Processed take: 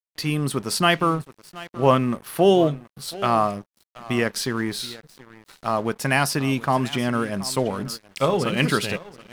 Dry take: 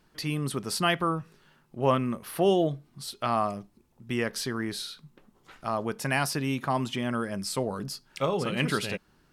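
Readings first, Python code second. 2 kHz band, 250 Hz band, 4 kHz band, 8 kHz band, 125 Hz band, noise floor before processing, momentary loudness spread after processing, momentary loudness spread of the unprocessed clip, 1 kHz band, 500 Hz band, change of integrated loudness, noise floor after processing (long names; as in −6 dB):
+6.5 dB, +6.5 dB, +6.0 dB, +6.0 dB, +6.0 dB, −65 dBFS, 13 LU, 12 LU, +6.5 dB, +6.5 dB, +6.5 dB, −76 dBFS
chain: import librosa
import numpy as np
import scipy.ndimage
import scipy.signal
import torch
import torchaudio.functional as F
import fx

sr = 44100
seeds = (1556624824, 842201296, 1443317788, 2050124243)

y = x + 10.0 ** (-16.5 / 20.0) * np.pad(x, (int(727 * sr / 1000.0), 0))[:len(x)]
y = np.sign(y) * np.maximum(np.abs(y) - 10.0 ** (-48.0 / 20.0), 0.0)
y = y * 10.0 ** (7.0 / 20.0)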